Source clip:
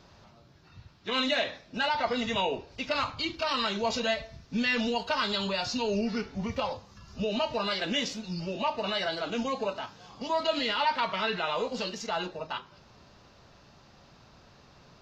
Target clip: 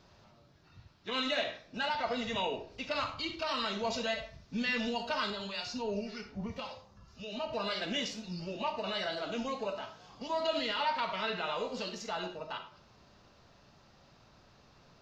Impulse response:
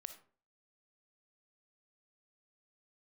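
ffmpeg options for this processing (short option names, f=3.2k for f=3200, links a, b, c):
-filter_complex "[0:a]asettb=1/sr,asplit=3[a][b][c];[a]atrim=end=5.304[d];[b]atrim=start=5.3:end=7.53,asetpts=PTS-STARTPTS,afade=t=in:d=0.004:c=qsin,afade=t=out:st=2.226:d=0.004:c=qsin,acrossover=split=1300[e][f];[e]aeval=exprs='val(0)*(1-0.7/2+0.7/2*cos(2*PI*1.8*n/s))':c=same[g];[f]aeval=exprs='val(0)*(1-0.7/2-0.7/2*cos(2*PI*1.8*n/s))':c=same[h];[g][h]amix=inputs=2:normalize=0[i];[c]atrim=start=7.526[j];[d][i]acrossfade=d=0.004:c1=hsin:c2=qsin[k];[k][j]acrossfade=d=0.004:c1=qsin:c2=hsin[l];[1:a]atrim=start_sample=2205[m];[l][m]afir=irnorm=-1:irlink=0"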